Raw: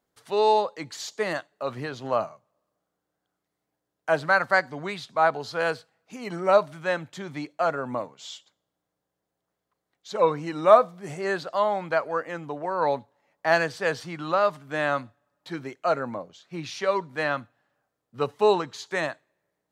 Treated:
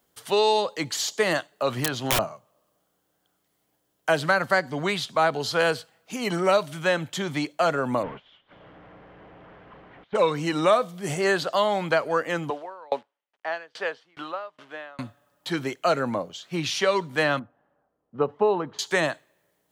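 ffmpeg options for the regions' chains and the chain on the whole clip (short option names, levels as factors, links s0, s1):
-filter_complex "[0:a]asettb=1/sr,asplit=3[s0][s1][s2];[s0]atrim=end=1.764[s3];[s1]atrim=start=1.76:end=2.19,asetpts=PTS-STARTPTS,afade=t=in:d=0.004:c=qsin,afade=t=out:st=0.426:d=0.004:c=qsin,aeval=exprs='(mod(11.9*val(0)+1,2)-1)/11.9':c=same,equalizer=f=450:t=o:w=0.3:g=-7.5[s4];[s2]atrim=start=2.186[s5];[s3][s4]acrossfade=d=0.004:c1=hsin:c2=qsin[s6];[s6][s5]acrossfade=d=0.004:c1=qsin:c2=hsin,asettb=1/sr,asplit=3[s7][s8][s9];[s7]atrim=end=8.034[s10];[s8]atrim=start=8.03:end=10.15,asetpts=PTS-STARTPTS,afade=t=in:d=0.004:c=qsin,afade=t=out:st=2.116:d=0.004:c=qsin,aeval=exprs='val(0)+0.5*0.0106*sgn(val(0))':c=same,lowpass=f=2200:w=0.5412,lowpass=f=2200:w=1.3066,agate=range=0.0224:threshold=0.00794:ratio=3:release=100:detection=peak[s11];[s9]atrim=start=10.146[s12];[s10][s11]acrossfade=d=0.004:c1=hsin:c2=qsin[s13];[s13][s12]acrossfade=d=0.004:c1=qsin:c2=hsin,asettb=1/sr,asplit=3[s14][s15][s16];[s14]atrim=end=12.504[s17];[s15]atrim=start=12.5:end=14.99,asetpts=PTS-STARTPTS,afade=t=in:d=0.004:c=qsin,afade=t=out:st=2.486:d=0.004:c=qsin,acrusher=bits=9:dc=4:mix=0:aa=0.000001,highpass=390,lowpass=3100,aeval=exprs='val(0)*pow(10,-35*if(lt(mod(2.4*n/s,1),2*abs(2.4)/1000),1-mod(2.4*n/s,1)/(2*abs(2.4)/1000),(mod(2.4*n/s,1)-2*abs(2.4)/1000)/(1-2*abs(2.4)/1000))/20)':c=same[s18];[s16]atrim=start=14.986[s19];[s17][s18]acrossfade=d=0.004:c1=hsin:c2=qsin[s20];[s20][s19]acrossfade=d=0.004:c1=qsin:c2=hsin,asettb=1/sr,asplit=3[s21][s22][s23];[s21]atrim=end=17.394[s24];[s22]atrim=start=17.39:end=18.79,asetpts=PTS-STARTPTS,afade=t=in:d=0.004:c=qsin,afade=t=out:st=1.396:d=0.004:c=qsin,lowpass=1000,equalizer=f=120:t=o:w=0.24:g=-11.5[s25];[s23]atrim=start=18.786[s26];[s24][s25]acrossfade=d=0.004:c1=hsin:c2=qsin[s27];[s27][s26]acrossfade=d=0.004:c1=qsin:c2=hsin,equalizer=f=3100:w=5:g=6.5,acrossover=split=500|1700[s28][s29][s30];[s28]acompressor=threshold=0.0282:ratio=4[s31];[s29]acompressor=threshold=0.0224:ratio=4[s32];[s30]acompressor=threshold=0.0178:ratio=4[s33];[s31][s32][s33]amix=inputs=3:normalize=0,highshelf=f=7600:g=10.5,volume=2.24"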